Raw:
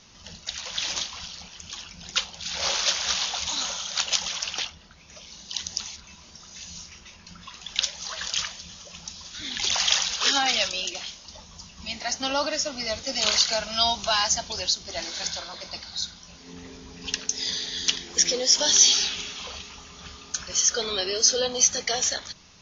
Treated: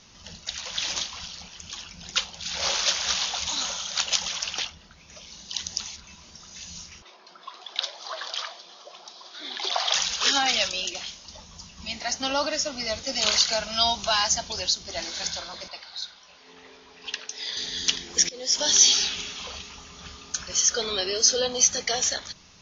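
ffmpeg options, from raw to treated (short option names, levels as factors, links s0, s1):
-filter_complex "[0:a]asettb=1/sr,asplit=3[s0][s1][s2];[s0]atrim=end=7.024[s3];[s1]atrim=start=7.02:end=9.94,asetpts=PTS-STARTPTS,afade=t=in:d=0.004:c=qsin,afade=t=out:st=2.916:d=0.004:c=qsin,highpass=f=320:w=0.5412,highpass=f=320:w=1.3066,equalizer=f=380:t=q:w=4:g=7,equalizer=f=700:t=q:w=4:g=10,equalizer=f=1100:t=q:w=4:g=5,equalizer=f=1900:t=q:w=4:g=-4,equalizer=f=2700:t=q:w=4:g=-8,lowpass=f=4600:w=0.5412,lowpass=f=4600:w=1.3066[s4];[s2]atrim=start=9.936[s5];[s3][s4]acrossfade=d=0.004:c1=hsin:c2=qsin[s6];[s6][s5]acrossfade=d=0.004:c1=qsin:c2=hsin,asettb=1/sr,asplit=3[s7][s8][s9];[s7]atrim=end=15.684[s10];[s8]atrim=start=15.68:end=17.57,asetpts=PTS-STARTPTS,afade=t=in:d=0.004:c=qsin,afade=t=out:st=1.886:d=0.004:c=qsin,acrossover=split=410 4700:gain=0.1 1 0.112[s11][s12][s13];[s11][s12][s13]amix=inputs=3:normalize=0[s14];[s9]atrim=start=17.566[s15];[s10][s14]acrossfade=d=0.004:c1=hsin:c2=qsin[s16];[s16][s15]acrossfade=d=0.004:c1=qsin:c2=hsin,asplit=2[s17][s18];[s17]atrim=end=18.29,asetpts=PTS-STARTPTS,afade=t=out:st=18.286:d=0.004:c=hsin:silence=0.0668344[s19];[s18]atrim=start=18.29,asetpts=PTS-STARTPTS,afade=t=in:d=0.59:c=qsin:silence=0.0668344[s20];[s19][s20]concat=n=2:v=0:a=1"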